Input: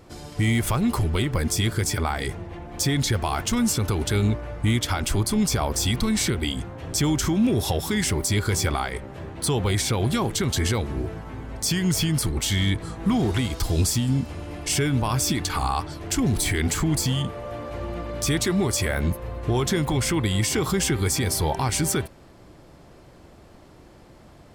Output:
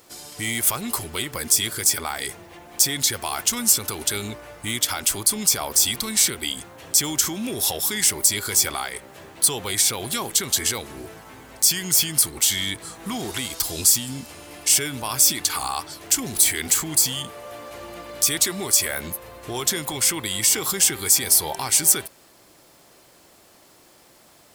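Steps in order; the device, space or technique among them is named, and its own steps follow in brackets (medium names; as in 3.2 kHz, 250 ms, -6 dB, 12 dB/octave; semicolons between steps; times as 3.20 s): turntable without a phono preamp (RIAA curve recording; white noise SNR 38 dB); trim -2 dB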